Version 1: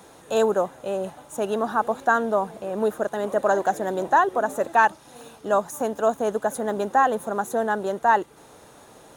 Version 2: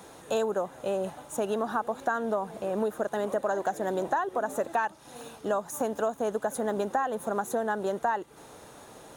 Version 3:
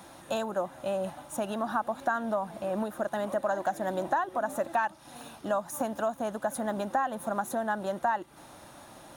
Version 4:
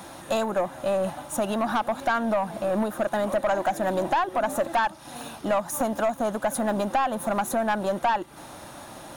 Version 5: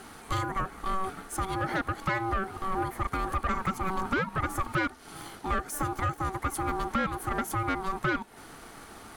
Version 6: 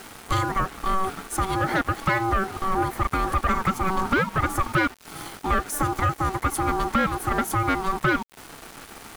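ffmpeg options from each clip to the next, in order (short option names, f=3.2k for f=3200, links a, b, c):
-af "acompressor=threshold=-25dB:ratio=6"
-af "superequalizer=7b=0.282:15b=0.631"
-af "aeval=exprs='(tanh(17.8*val(0)+0.15)-tanh(0.15))/17.8':c=same,volume=8dB"
-af "aeval=exprs='val(0)*sin(2*PI*570*n/s)':c=same,volume=-2dB"
-af "aeval=exprs='val(0)*gte(abs(val(0)),0.00668)':c=same,volume=6.5dB"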